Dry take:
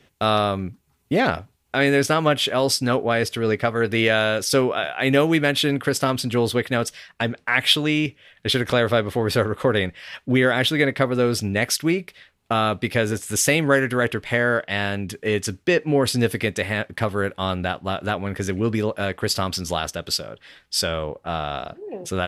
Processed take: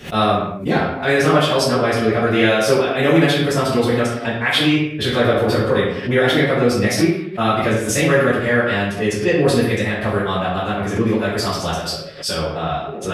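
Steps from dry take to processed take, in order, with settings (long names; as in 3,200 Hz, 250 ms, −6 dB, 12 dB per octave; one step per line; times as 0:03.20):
phase-vocoder stretch with locked phases 0.59×
convolution reverb, pre-delay 4 ms, DRR −10 dB
background raised ahead of every attack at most 150 dB per second
level −6 dB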